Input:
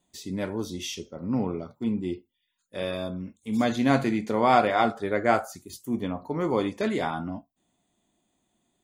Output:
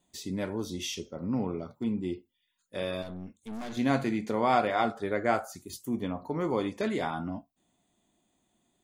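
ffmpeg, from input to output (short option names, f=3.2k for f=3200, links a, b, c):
-filter_complex "[0:a]asplit=2[a][b];[b]acompressor=threshold=-32dB:ratio=6,volume=1dB[c];[a][c]amix=inputs=2:normalize=0,asettb=1/sr,asplit=3[d][e][f];[d]atrim=end=3.024[g];[e]atrim=start=3.02:end=3.77,asetpts=PTS-STARTPTS,afade=t=in:d=0.004:c=qsin,afade=t=out:st=0.746:d=0.004:c=qsin,aeval=exprs='(tanh(31.6*val(0)+0.6)-tanh(0.6))/31.6':c=same[h];[f]atrim=start=3.766[i];[g][h]acrossfade=d=0.004:c1=hsin:c2=qsin[j];[j][i]acrossfade=d=0.004:c1=qsin:c2=hsin,volume=-6.5dB"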